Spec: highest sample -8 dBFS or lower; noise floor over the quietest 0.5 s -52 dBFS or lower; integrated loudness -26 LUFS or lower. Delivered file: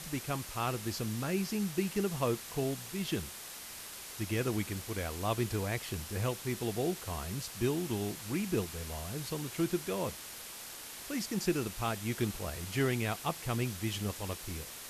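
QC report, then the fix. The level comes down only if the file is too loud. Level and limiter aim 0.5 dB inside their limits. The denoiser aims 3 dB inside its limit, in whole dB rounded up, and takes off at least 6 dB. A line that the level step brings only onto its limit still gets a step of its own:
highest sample -18.0 dBFS: pass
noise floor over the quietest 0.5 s -46 dBFS: fail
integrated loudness -35.5 LUFS: pass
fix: noise reduction 9 dB, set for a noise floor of -46 dBFS

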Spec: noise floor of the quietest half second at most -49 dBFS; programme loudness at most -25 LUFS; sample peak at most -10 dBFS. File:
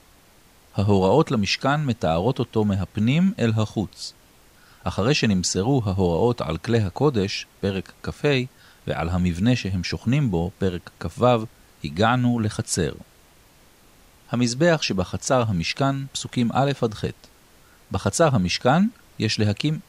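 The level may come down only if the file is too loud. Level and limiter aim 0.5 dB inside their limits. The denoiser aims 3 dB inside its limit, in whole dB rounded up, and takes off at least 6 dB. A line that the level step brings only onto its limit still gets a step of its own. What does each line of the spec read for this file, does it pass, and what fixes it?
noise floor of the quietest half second -54 dBFS: pass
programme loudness -22.5 LUFS: fail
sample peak -6.0 dBFS: fail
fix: trim -3 dB; peak limiter -10.5 dBFS

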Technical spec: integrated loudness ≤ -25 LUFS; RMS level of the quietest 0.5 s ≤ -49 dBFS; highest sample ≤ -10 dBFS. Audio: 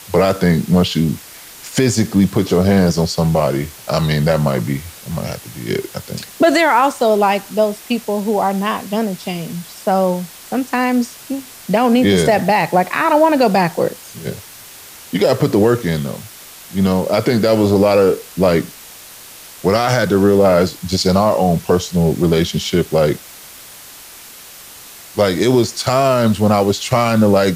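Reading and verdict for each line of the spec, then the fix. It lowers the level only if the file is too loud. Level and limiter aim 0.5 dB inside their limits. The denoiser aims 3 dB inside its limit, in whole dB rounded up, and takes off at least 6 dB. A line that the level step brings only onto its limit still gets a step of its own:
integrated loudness -15.5 LUFS: fail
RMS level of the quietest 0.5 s -38 dBFS: fail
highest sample -3.0 dBFS: fail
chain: noise reduction 6 dB, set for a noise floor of -38 dBFS; trim -10 dB

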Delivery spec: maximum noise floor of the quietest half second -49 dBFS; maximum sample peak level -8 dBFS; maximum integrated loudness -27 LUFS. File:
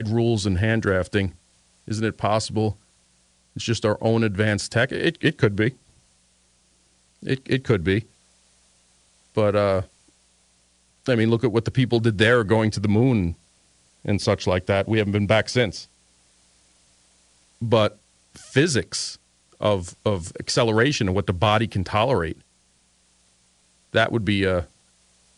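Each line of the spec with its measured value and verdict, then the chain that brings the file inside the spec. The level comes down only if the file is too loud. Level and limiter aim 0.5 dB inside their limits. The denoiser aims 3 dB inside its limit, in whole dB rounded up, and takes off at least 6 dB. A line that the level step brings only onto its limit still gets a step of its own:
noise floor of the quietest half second -62 dBFS: pass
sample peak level -5.5 dBFS: fail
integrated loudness -22.5 LUFS: fail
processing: trim -5 dB

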